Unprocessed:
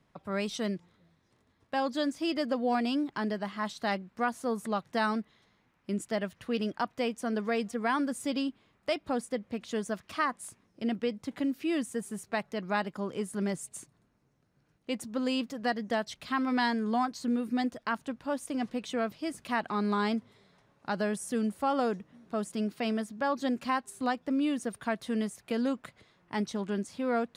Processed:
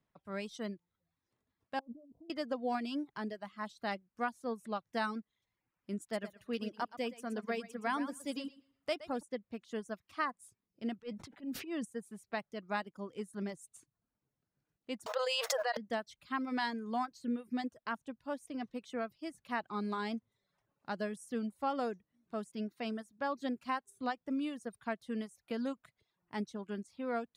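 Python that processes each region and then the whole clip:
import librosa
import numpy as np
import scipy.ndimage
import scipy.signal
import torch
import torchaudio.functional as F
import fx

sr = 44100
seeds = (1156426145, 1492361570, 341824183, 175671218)

y = fx.chain(x, sr, fx.cheby2_lowpass(hz=1800.0, order=4, stop_db=50),
    fx.over_compress(threshold_db=-40.0, ratio=-1.0), at=(1.79, 2.3))
y = fx.chain(y, sr, fx.high_shelf(hz=10000.0, db=7.0),
    fx.echo_feedback(ms=119, feedback_pct=31, wet_db=-7.5), at=(6.01, 9.23))
y = fx.chain(y, sr, fx.high_shelf(hz=9000.0, db=-9.5),
    fx.transient(attack_db=-12, sustain_db=2),
    fx.sustainer(db_per_s=44.0), at=(10.99, 11.85))
y = fx.chain(y, sr, fx.brickwall_highpass(low_hz=460.0),
    fx.notch(hz=2300.0, q=22.0),
    fx.env_flatten(amount_pct=100), at=(15.06, 15.77))
y = fx.dereverb_blind(y, sr, rt60_s=0.63)
y = fx.upward_expand(y, sr, threshold_db=-44.0, expansion=1.5)
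y = y * librosa.db_to_amplitude(-4.5)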